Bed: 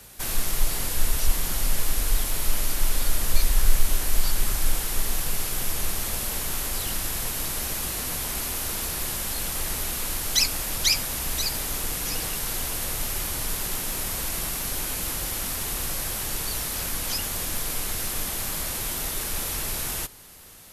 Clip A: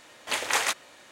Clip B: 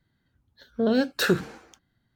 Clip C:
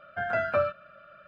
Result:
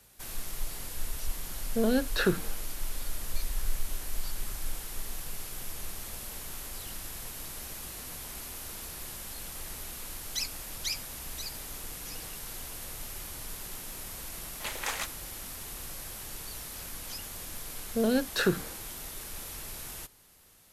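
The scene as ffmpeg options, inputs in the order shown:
-filter_complex "[2:a]asplit=2[a][b];[0:a]volume=-12dB[c];[a]lowpass=5k[d];[b]lowpass=11k[e];[d]atrim=end=2.15,asetpts=PTS-STARTPTS,volume=-4dB,afade=t=in:d=0.004:c=hsin,afade=t=out:st=2.146:d=0.004:c=hsin,adelay=970[f];[1:a]atrim=end=1.11,asetpts=PTS-STARTPTS,volume=-9dB,afade=t=in:d=0.004:c=hsin,afade=t=out:st=1.106:d=0.004:c=hsin,adelay=14330[g];[e]atrim=end=2.15,asetpts=PTS-STARTPTS,volume=-4dB,afade=t=in:d=0.004:c=hsin,afade=t=out:st=2.146:d=0.004:c=hsin,adelay=17170[h];[c][f][g][h]amix=inputs=4:normalize=0"

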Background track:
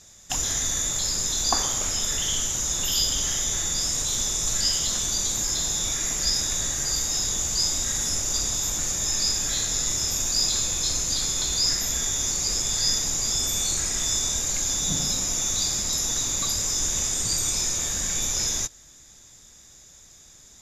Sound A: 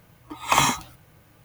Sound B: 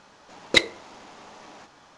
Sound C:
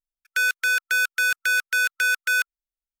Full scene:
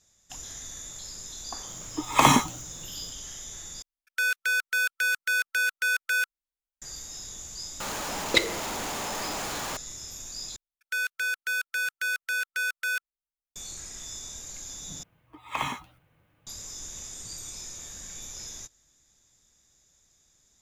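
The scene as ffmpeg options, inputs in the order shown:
-filter_complex "[1:a]asplit=2[a][b];[3:a]asplit=2[c][d];[0:a]volume=-15dB[e];[a]equalizer=f=270:t=o:w=2.5:g=9[f];[c]acontrast=21[g];[2:a]aeval=exprs='val(0)+0.5*0.0668*sgn(val(0))':c=same[h];[b]highshelf=f=3.8k:t=q:w=1.5:g=-7[i];[e]asplit=4[j][k][l][m];[j]atrim=end=3.824[n];[g]atrim=end=3,asetpts=PTS-STARTPTS,volume=-9dB[o];[k]atrim=start=6.816:end=10.564[p];[d]atrim=end=3,asetpts=PTS-STARTPTS,volume=-7.5dB[q];[l]atrim=start=13.556:end=15.034[r];[i]atrim=end=1.44,asetpts=PTS-STARTPTS,volume=-11.5dB[s];[m]atrim=start=16.466[t];[f]atrim=end=1.44,asetpts=PTS-STARTPTS,volume=-1.5dB,afade=t=in:d=0.004:c=hsin,afade=t=out:st=1.436:d=0.004:c=hsin,adelay=1670[u];[h]atrim=end=1.97,asetpts=PTS-STARTPTS,volume=-5dB,afade=t=in:d=0.004:c=hsin,afade=t=out:st=1.966:d=0.004:c=hsin,adelay=7800[v];[n][o]acrossfade=d=0.004:c1=hsin:c2=hsin[w];[w][p]acrossfade=d=0.004:c1=hsin:c2=hsin[x];[x][q]acrossfade=d=0.004:c1=hsin:c2=hsin[y];[y][r]acrossfade=d=0.004:c1=hsin:c2=hsin[z];[z][s]acrossfade=d=0.004:c1=hsin:c2=hsin[aa];[aa][t]acrossfade=d=0.004:c1=hsin:c2=hsin[ab];[ab][u][v]amix=inputs=3:normalize=0"

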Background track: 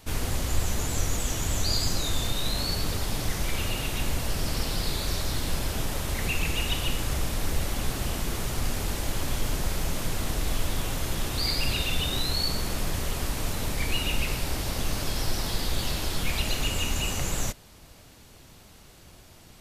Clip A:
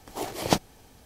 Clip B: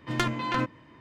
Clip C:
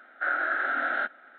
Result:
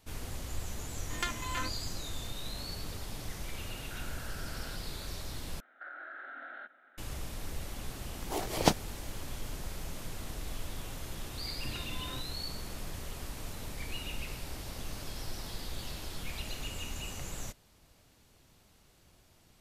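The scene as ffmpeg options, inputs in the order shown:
-filter_complex "[2:a]asplit=2[a][b];[3:a]asplit=2[c][d];[0:a]volume=-12dB[e];[a]tiltshelf=f=690:g=-7.5[f];[c]acompressor=threshold=-41dB:ratio=6:attack=3.2:release=140:knee=1:detection=peak[g];[d]acompressor=threshold=-33dB:ratio=6:attack=3.2:release=140:knee=1:detection=peak[h];[b]acompressor=threshold=-30dB:ratio=6:attack=3.2:release=140:knee=1:detection=peak[i];[e]asplit=2[j][k];[j]atrim=end=5.604[l];[h]atrim=end=1.38,asetpts=PTS-STARTPTS,volume=-9.5dB[m];[k]atrim=start=6.976[n];[f]atrim=end=1,asetpts=PTS-STARTPTS,volume=-11.5dB,afade=t=in:d=0.004:c=hsin,afade=t=out:st=0.996:d=0.004:c=hsin,adelay=1030[o];[g]atrim=end=1.38,asetpts=PTS-STARTPTS,volume=-7dB,afade=t=in:d=0.004:c=hsin,afade=t=out:st=1.376:d=0.004:c=hsin,adelay=3700[p];[1:a]atrim=end=1.05,asetpts=PTS-STARTPTS,volume=-2.5dB,afade=t=in:d=0.004:c=hsin,afade=t=out:st=1.046:d=0.004:c=hsin,adelay=8150[q];[i]atrim=end=1,asetpts=PTS-STARTPTS,volume=-12.5dB,afade=t=in:d=0.004:c=hsin,afade=t=out:st=0.996:d=0.004:c=hsin,adelay=11560[r];[l][m]acrossfade=d=0.004:c1=hsin:c2=hsin[s];[s][n]acrossfade=d=0.004:c1=hsin:c2=hsin[t];[t][o][p][q][r]amix=inputs=5:normalize=0"

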